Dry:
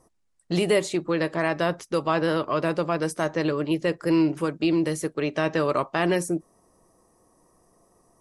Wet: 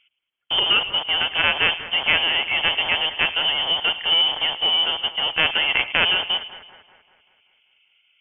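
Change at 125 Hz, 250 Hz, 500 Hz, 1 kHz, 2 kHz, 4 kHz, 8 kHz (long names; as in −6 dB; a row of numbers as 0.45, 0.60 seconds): −12.0 dB, −16.5 dB, −9.5 dB, +1.5 dB, +11.0 dB, +21.5 dB, below −40 dB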